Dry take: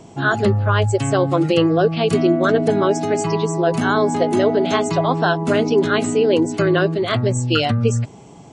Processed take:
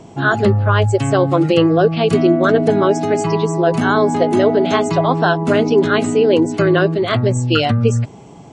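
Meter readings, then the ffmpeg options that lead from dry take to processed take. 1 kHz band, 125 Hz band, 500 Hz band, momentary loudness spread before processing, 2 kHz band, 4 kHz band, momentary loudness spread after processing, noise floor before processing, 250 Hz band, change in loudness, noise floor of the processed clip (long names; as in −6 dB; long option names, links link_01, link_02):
+3.0 dB, +3.0 dB, +3.0 dB, 3 LU, +2.5 dB, +1.5 dB, 3 LU, −42 dBFS, +3.0 dB, +3.0 dB, −39 dBFS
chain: -af "highshelf=frequency=5000:gain=-6,volume=3dB"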